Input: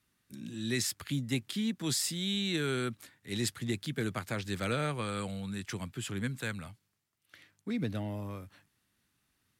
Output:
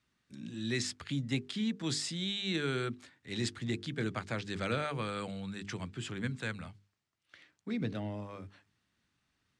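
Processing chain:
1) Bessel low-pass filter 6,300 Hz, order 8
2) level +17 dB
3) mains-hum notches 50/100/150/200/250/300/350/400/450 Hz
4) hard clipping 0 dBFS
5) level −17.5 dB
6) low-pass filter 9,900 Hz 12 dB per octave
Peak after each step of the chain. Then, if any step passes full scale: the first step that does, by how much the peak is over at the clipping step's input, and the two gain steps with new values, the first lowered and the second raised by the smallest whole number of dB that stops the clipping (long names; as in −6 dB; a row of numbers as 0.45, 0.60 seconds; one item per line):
−20.5, −3.5, −4.0, −4.0, −21.5, −21.5 dBFS
no step passes full scale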